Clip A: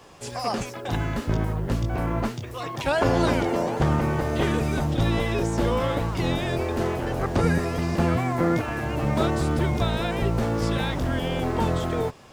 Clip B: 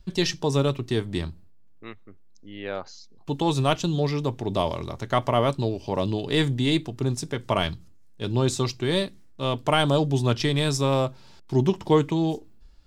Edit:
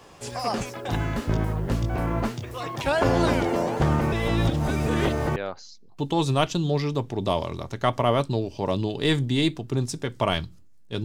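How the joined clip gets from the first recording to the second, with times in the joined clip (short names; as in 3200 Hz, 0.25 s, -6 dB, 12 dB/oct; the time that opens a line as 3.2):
clip A
4.12–5.36 reverse
5.36 switch to clip B from 2.65 s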